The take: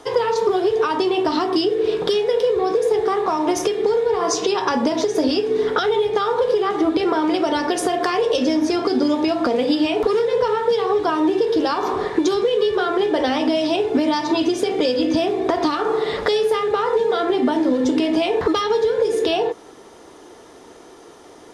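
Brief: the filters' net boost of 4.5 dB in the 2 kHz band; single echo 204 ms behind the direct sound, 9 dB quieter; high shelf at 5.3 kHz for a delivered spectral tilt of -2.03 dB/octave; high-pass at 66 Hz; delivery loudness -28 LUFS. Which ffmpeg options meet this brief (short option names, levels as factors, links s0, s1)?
-af "highpass=66,equalizer=f=2000:t=o:g=6.5,highshelf=f=5300:g=-4.5,aecho=1:1:204:0.355,volume=0.335"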